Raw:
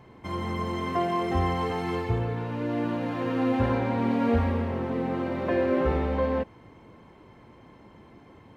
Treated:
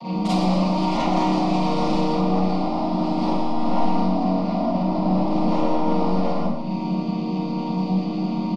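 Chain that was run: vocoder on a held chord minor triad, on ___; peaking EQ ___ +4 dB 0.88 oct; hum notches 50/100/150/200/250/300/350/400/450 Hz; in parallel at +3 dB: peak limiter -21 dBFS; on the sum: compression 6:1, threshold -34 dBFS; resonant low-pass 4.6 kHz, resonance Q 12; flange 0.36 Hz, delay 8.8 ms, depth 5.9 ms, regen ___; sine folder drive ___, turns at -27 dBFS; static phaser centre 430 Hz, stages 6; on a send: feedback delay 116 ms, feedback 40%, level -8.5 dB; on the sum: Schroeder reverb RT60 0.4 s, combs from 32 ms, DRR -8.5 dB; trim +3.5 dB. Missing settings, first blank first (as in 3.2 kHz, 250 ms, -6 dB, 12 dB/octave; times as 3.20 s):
D#3, 180 Hz, +75%, 11 dB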